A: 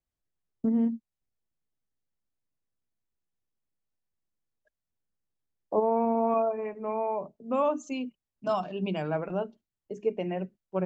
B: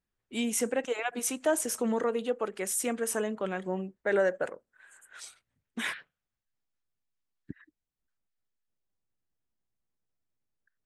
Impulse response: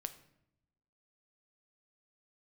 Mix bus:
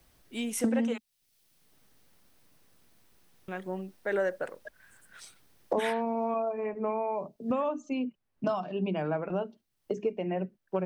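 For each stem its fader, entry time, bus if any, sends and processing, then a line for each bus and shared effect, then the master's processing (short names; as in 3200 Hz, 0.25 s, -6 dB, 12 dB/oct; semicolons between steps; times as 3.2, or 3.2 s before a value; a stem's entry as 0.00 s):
-3.0 dB, 0.00 s, no send, three-band squash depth 100%
-3.0 dB, 0.00 s, muted 0.98–3.48, no send, dry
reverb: off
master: bell 7100 Hz -6.5 dB 0.22 oct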